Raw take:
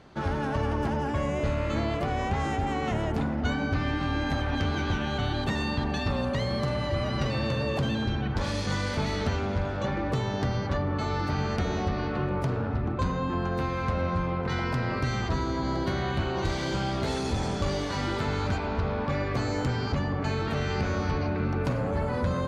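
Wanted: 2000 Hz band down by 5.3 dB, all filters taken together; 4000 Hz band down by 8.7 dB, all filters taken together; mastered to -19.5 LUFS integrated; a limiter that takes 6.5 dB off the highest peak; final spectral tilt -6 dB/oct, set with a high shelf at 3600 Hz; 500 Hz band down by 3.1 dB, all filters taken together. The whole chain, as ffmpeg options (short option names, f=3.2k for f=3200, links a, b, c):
-af "equalizer=f=500:t=o:g=-3.5,equalizer=f=2k:t=o:g=-4.5,highshelf=f=3.6k:g=-4,equalizer=f=4k:t=o:g=-7,volume=13dB,alimiter=limit=-10.5dB:level=0:latency=1"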